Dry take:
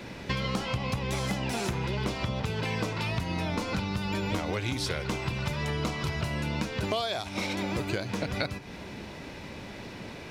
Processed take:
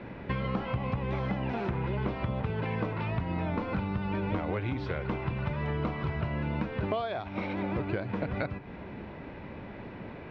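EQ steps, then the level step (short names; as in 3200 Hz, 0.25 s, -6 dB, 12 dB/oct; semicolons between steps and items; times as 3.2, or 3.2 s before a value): LPF 2100 Hz 12 dB/oct; air absorption 170 m; 0.0 dB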